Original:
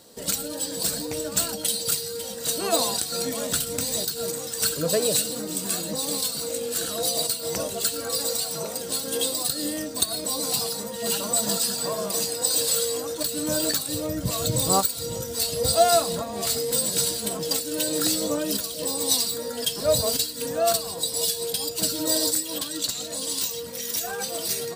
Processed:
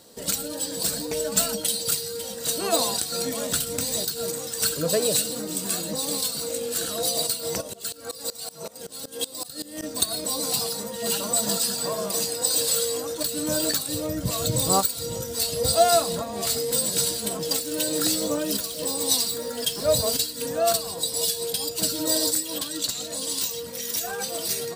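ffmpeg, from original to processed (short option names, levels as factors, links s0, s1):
-filter_complex "[0:a]asettb=1/sr,asplit=3[s0][s1][s2];[s0]atrim=end=1.114[s3];[s1]atrim=start=1.11:end=1.6,asetpts=PTS-STARTPTS,afade=t=in:d=0.004:c=qsin,afade=t=out:st=0.486:d=0.004:c=qsin,aecho=1:1:4.6:0.76,atrim=end_sample=21609[s4];[s2]atrim=start=1.596[s5];[s3][s4]acrossfade=d=0.004:c1=hsin:c2=qsin[s6];[s6][s5]acrossfade=d=0.004:c1=qsin:c2=hsin,asplit=3[s7][s8][s9];[s7]afade=t=out:st=7.6:d=0.02[s10];[s8]aeval=exprs='val(0)*pow(10,-22*if(lt(mod(-5.3*n/s,1),2*abs(-5.3)/1000),1-mod(-5.3*n/s,1)/(2*abs(-5.3)/1000),(mod(-5.3*n/s,1)-2*abs(-5.3)/1000)/(1-2*abs(-5.3)/1000))/20)':c=same,afade=t=in:st=7.6:d=0.02,afade=t=out:st=9.82:d=0.02[s11];[s9]afade=t=in:st=9.82:d=0.02[s12];[s10][s11][s12]amix=inputs=3:normalize=0,asettb=1/sr,asplit=3[s13][s14][s15];[s13]atrim=end=17.494[s16];[s14]atrim=start=17.49:end=20.08,asetpts=PTS-STARTPTS,afade=t=in:d=0.004:c=qsin,afade=t=out:st=2.586:d=0.004:c=qsin,acrusher=bits=6:mix=0:aa=0.5[s17];[s15]atrim=start=20.076[s18];[s16][s17]acrossfade=d=0.004:c1=hsin:c2=qsin[s19];[s19][s18]acrossfade=d=0.004:c1=qsin:c2=hsin"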